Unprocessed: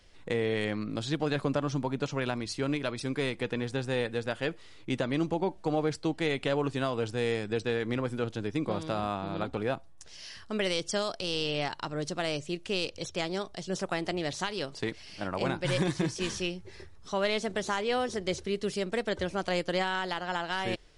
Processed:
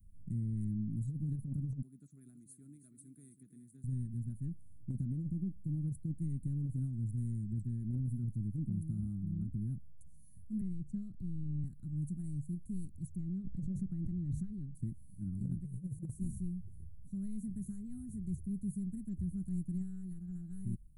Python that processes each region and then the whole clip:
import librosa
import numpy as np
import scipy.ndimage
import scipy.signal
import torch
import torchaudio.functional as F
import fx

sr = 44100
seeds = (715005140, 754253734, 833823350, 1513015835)

y = fx.chain(x, sr, fx.highpass(hz=560.0, slope=12),
    fx.echo_single(ms=325, db=-11.0), at=(1.82, 3.84))
y = fx.chain(y, sr, fx.lowpass(hz=3400.0, slope=12),
    fx.peak_eq(hz=880.0, db=-7.5, octaves=0.37),
    fx.band_squash(depth_pct=40), at=(10.61, 11.64))
y = fx.chain(y, sr, fx.lowpass(hz=3500.0, slope=12),
    fx.pre_swell(db_per_s=21.0), at=(13.16, 14.75))
y = scipy.signal.sosfilt(scipy.signal.cheby2(4, 50, [470.0, 5500.0], 'bandstop', fs=sr, output='sos'), y)
y = fx.over_compress(y, sr, threshold_db=-37.0, ratio=-0.5)
y = F.gain(torch.from_numpy(y), 2.5).numpy()